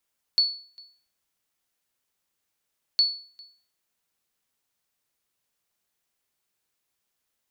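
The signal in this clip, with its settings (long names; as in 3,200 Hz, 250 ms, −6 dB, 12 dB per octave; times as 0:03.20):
ping with an echo 4,430 Hz, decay 0.44 s, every 2.61 s, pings 2, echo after 0.40 s, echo −26.5 dB −13.5 dBFS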